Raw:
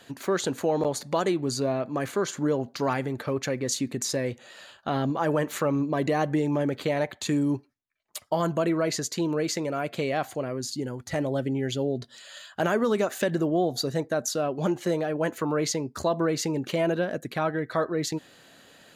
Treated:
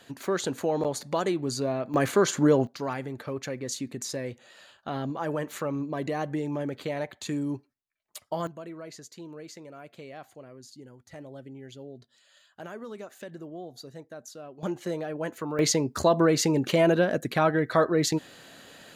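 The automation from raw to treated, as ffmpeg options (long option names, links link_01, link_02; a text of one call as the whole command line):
ffmpeg -i in.wav -af "asetnsamples=nb_out_samples=441:pad=0,asendcmd='1.94 volume volume 5dB;2.67 volume volume -5.5dB;8.47 volume volume -16dB;14.63 volume volume -5.5dB;15.59 volume volume 4dB',volume=-2dB" out.wav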